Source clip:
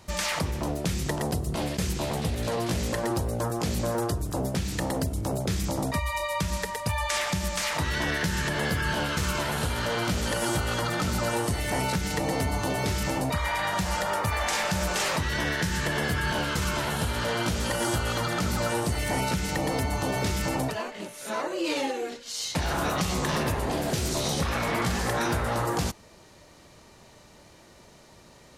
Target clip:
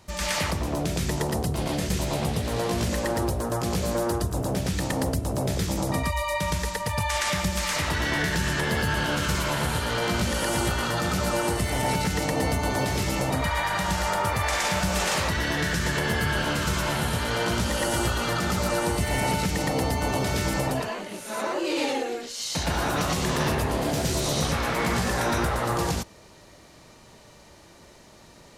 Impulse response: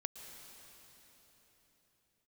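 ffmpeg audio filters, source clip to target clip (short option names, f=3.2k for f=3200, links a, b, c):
-filter_complex "[0:a]asplit=2[a][b];[1:a]atrim=start_sample=2205,atrim=end_sample=3087,adelay=117[c];[b][c]afir=irnorm=-1:irlink=0,volume=5dB[d];[a][d]amix=inputs=2:normalize=0,volume=-2dB"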